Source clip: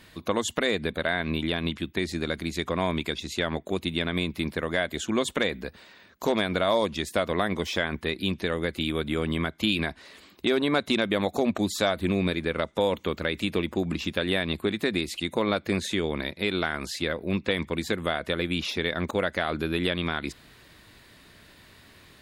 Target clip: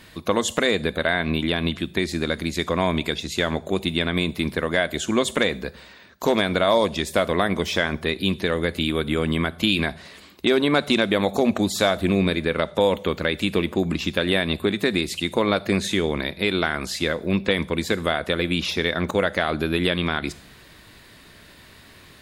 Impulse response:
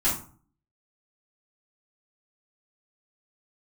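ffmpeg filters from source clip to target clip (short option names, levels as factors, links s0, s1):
-filter_complex "[0:a]asplit=2[s0][s1];[1:a]atrim=start_sample=2205,asetrate=27342,aresample=44100,highshelf=f=5500:g=11.5[s2];[s1][s2]afir=irnorm=-1:irlink=0,volume=0.0237[s3];[s0][s3]amix=inputs=2:normalize=0,volume=1.68"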